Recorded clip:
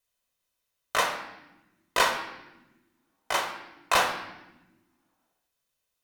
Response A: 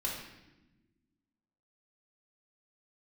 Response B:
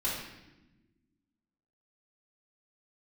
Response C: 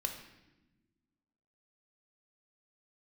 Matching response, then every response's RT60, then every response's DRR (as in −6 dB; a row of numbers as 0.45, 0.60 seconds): C; 1.1, 1.1, 1.1 seconds; −4.5, −8.5, 3.0 decibels